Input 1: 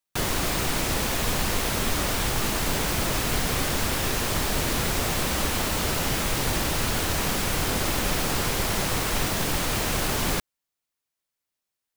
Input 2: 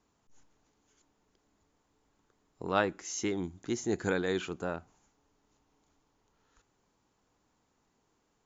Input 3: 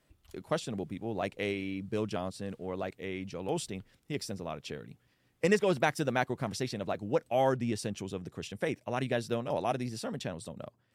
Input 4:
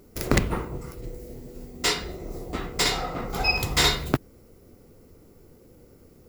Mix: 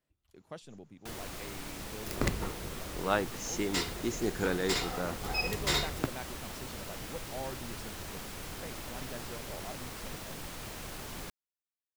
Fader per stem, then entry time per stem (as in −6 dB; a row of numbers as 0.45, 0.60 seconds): −17.0, −1.0, −14.0, −9.5 decibels; 0.90, 0.35, 0.00, 1.90 seconds